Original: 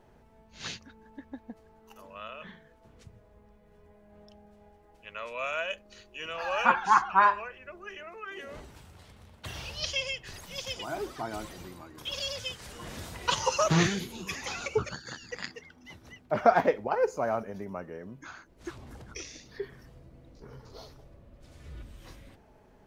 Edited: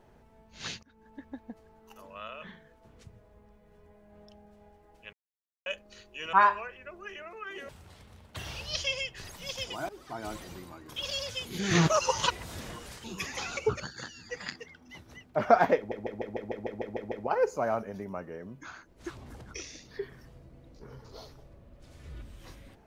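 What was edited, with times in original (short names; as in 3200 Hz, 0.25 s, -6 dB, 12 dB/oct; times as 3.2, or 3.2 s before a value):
0.83–1.3 fade in equal-power, from -18 dB
5.13–5.66 mute
6.33–7.14 cut
8.5–8.78 cut
10.98–11.41 fade in, from -18 dB
12.54–14.13 reverse
15.16–15.43 stretch 1.5×
16.72 stutter 0.15 s, 10 plays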